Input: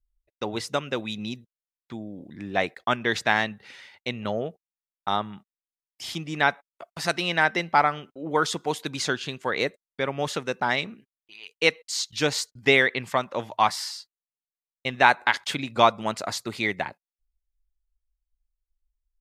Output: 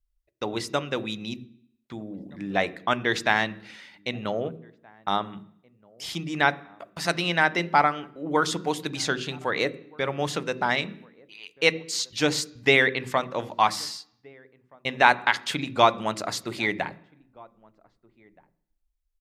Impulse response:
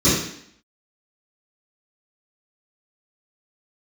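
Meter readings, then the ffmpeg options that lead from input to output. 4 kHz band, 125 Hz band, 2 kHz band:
0.0 dB, +1.0 dB, 0.0 dB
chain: -filter_complex "[0:a]asplit=2[a][b];[b]adelay=1574,volume=-26dB,highshelf=f=4k:g=-35.4[c];[a][c]amix=inputs=2:normalize=0,asplit=2[d][e];[1:a]atrim=start_sample=2205,lowpass=3.1k[f];[e][f]afir=irnorm=-1:irlink=0,volume=-35dB[g];[d][g]amix=inputs=2:normalize=0"

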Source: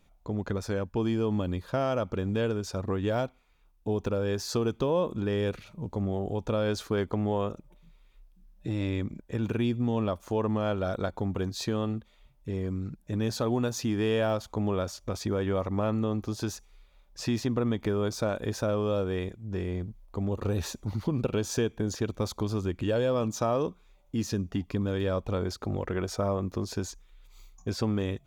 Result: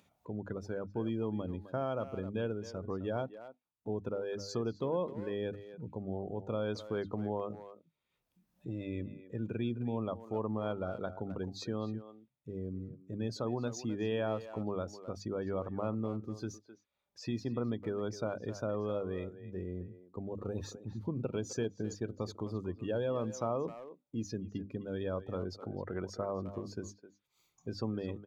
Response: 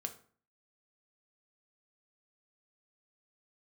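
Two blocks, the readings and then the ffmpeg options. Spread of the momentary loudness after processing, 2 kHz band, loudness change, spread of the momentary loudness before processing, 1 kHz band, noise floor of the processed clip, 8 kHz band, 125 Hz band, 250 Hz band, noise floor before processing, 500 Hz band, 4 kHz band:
9 LU, -9.5 dB, -7.5 dB, 7 LU, -7.5 dB, -82 dBFS, -10.5 dB, -9.0 dB, -7.5 dB, -61 dBFS, -7.0 dB, -10.5 dB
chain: -filter_complex "[0:a]highpass=f=86:w=0.5412,highpass=f=86:w=1.3066,bandreject=f=50:t=h:w=6,bandreject=f=100:t=h:w=6,bandreject=f=150:t=h:w=6,bandreject=f=200:t=h:w=6,bandreject=f=250:t=h:w=6,bandreject=f=300:t=h:w=6,afftdn=nr=18:nf=-38,acompressor=mode=upward:threshold=-45dB:ratio=2.5,asplit=2[a][b];[b]adelay=260,highpass=300,lowpass=3.4k,asoftclip=type=hard:threshold=-23dB,volume=-12dB[c];[a][c]amix=inputs=2:normalize=0,volume=-7dB"

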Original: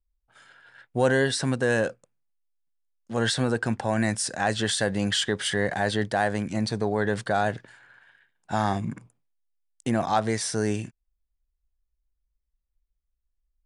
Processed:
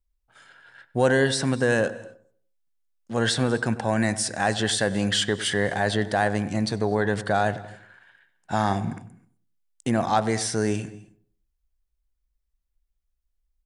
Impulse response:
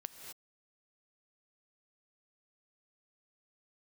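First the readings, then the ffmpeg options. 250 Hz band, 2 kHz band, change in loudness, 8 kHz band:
+2.0 dB, +1.5 dB, +1.5 dB, +1.5 dB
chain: -filter_complex "[0:a]asplit=2[a][b];[b]adelay=97,lowpass=f=1.3k:p=1,volume=-14.5dB,asplit=2[c][d];[d]adelay=97,lowpass=f=1.3k:p=1,volume=0.41,asplit=2[e][f];[f]adelay=97,lowpass=f=1.3k:p=1,volume=0.41,asplit=2[g][h];[h]adelay=97,lowpass=f=1.3k:p=1,volume=0.41[i];[a][c][e][g][i]amix=inputs=5:normalize=0,asplit=2[j][k];[1:a]atrim=start_sample=2205[l];[k][l]afir=irnorm=-1:irlink=0,volume=-9.5dB[m];[j][m]amix=inputs=2:normalize=0"

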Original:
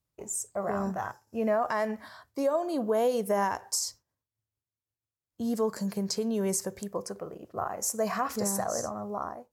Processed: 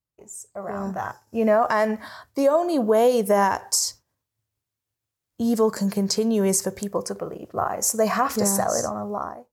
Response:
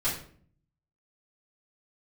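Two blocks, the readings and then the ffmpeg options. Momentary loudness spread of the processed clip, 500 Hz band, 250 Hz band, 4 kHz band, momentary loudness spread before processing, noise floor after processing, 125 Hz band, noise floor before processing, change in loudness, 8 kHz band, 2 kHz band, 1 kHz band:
13 LU, +8.0 dB, +8.0 dB, +8.0 dB, 9 LU, under -85 dBFS, +7.5 dB, under -85 dBFS, +8.0 dB, +7.5 dB, +8.0 dB, +7.5 dB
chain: -af "dynaudnorm=f=380:g=5:m=15dB,volume=-6dB"

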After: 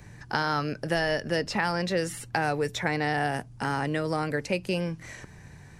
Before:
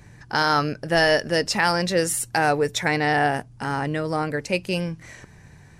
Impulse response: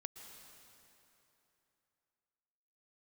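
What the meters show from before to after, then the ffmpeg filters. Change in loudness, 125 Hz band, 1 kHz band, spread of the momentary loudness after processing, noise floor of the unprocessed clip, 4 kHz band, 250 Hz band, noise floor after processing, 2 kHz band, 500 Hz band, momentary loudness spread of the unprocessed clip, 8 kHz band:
-6.0 dB, -3.5 dB, -6.5 dB, 5 LU, -49 dBFS, -8.0 dB, -4.0 dB, -49 dBFS, -6.5 dB, -6.0 dB, 8 LU, -11.5 dB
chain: -filter_complex "[0:a]acrossover=split=220|1900|4000[a][b][c][d];[a]acompressor=threshold=-34dB:ratio=4[e];[b]acompressor=threshold=-26dB:ratio=4[f];[c]acompressor=threshold=-37dB:ratio=4[g];[d]acompressor=threshold=-43dB:ratio=4[h];[e][f][g][h]amix=inputs=4:normalize=0"

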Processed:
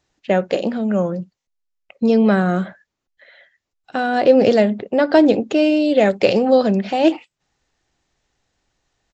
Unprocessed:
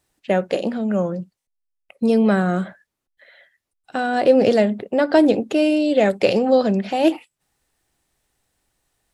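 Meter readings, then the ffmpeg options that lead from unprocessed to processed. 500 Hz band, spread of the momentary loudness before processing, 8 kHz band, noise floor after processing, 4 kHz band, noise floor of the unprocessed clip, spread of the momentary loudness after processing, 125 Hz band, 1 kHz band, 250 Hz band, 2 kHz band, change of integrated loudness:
+2.0 dB, 10 LU, n/a, -81 dBFS, +2.0 dB, -81 dBFS, 10 LU, +2.0 dB, +2.0 dB, +2.0 dB, +2.0 dB, +2.0 dB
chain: -af "aresample=16000,aresample=44100,volume=2dB"

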